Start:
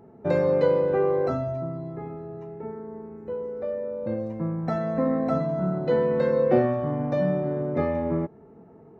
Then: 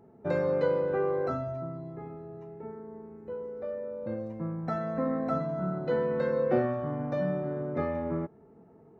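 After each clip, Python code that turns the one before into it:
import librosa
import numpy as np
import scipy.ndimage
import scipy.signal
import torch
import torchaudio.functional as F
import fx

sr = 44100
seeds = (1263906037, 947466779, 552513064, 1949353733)

y = fx.dynamic_eq(x, sr, hz=1400.0, q=2.8, threshold_db=-49.0, ratio=4.0, max_db=6)
y = y * librosa.db_to_amplitude(-6.0)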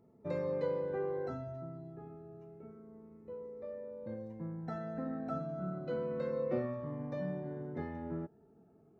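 y = fx.notch_cascade(x, sr, direction='falling', hz=0.31)
y = y * librosa.db_to_amplitude(-7.0)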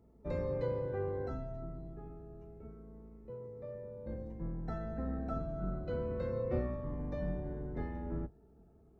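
y = fx.octave_divider(x, sr, octaves=2, level_db=3.0)
y = y * librosa.db_to_amplitude(-1.5)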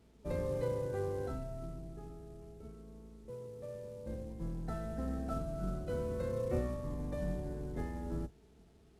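y = fx.cvsd(x, sr, bps=64000)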